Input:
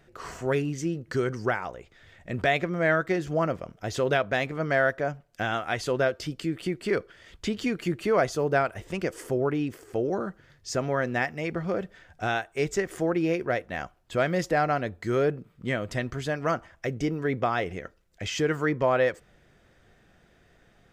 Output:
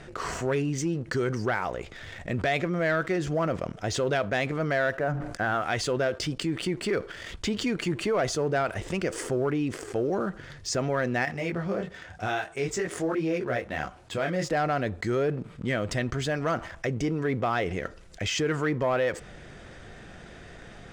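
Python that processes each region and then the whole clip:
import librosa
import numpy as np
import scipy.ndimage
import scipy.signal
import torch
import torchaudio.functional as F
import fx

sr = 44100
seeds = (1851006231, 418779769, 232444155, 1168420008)

y = fx.chain(x, sr, fx.high_shelf_res(hz=2200.0, db=-8.5, q=1.5),
    fx.hum_notches(base_hz=60, count=5),
    fx.sustainer(db_per_s=94.0), at=(4.95, 5.62))
y = fx.chain(y, sr, fx.highpass(hz=47.0, slope=12),
    fx.detune_double(cents=18), at=(11.25, 14.5))
y = scipy.signal.sosfilt(scipy.signal.butter(6, 10000.0, 'lowpass', fs=sr, output='sos'), y)
y = fx.leveller(y, sr, passes=1)
y = fx.env_flatten(y, sr, amount_pct=50)
y = y * 10.0 ** (-6.0 / 20.0)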